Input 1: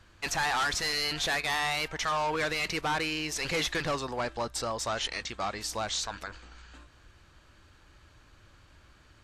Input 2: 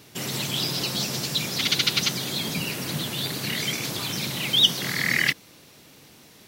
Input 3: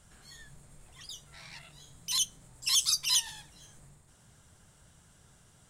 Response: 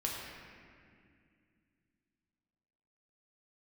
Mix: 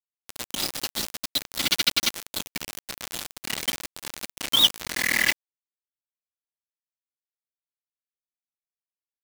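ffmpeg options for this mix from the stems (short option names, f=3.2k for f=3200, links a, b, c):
-filter_complex "[0:a]highpass=f=77:p=1,aeval=exprs='val(0)*sin(2*PI*130*n/s)':c=same,adelay=2450,volume=-8.5dB,asplit=2[a][b];[b]volume=-9.5dB[c];[1:a]bandreject=f=50:t=h:w=6,bandreject=f=100:t=h:w=6,bandreject=f=150:t=h:w=6,bandreject=f=200:t=h:w=6,bandreject=f=250:t=h:w=6,volume=-2.5dB[d];[2:a]equalizer=f=500:t=o:w=1:g=-7,equalizer=f=2k:t=o:w=1:g=11,equalizer=f=8k:t=o:w=1:g=-12,acompressor=threshold=-53dB:ratio=1.5,volume=0dB[e];[c]aecho=0:1:598:1[f];[a][d][e][f]amix=inputs=4:normalize=0,afftdn=nr=16:nf=-38,aecho=1:1:3.5:0.77,acrusher=bits=3:mix=0:aa=0.000001"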